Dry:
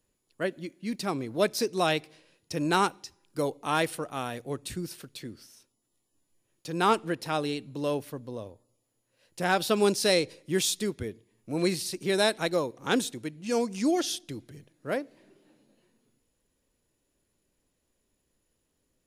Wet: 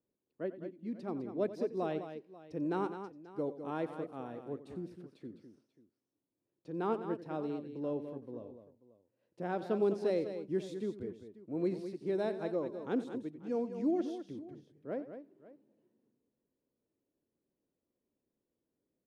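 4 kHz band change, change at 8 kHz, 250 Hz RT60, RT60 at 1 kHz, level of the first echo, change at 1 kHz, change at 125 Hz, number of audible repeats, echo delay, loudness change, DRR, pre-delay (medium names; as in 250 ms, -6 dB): -25.5 dB, under -30 dB, no reverb, no reverb, -14.5 dB, -12.5 dB, -9.0 dB, 3, 90 ms, -8.5 dB, no reverb, no reverb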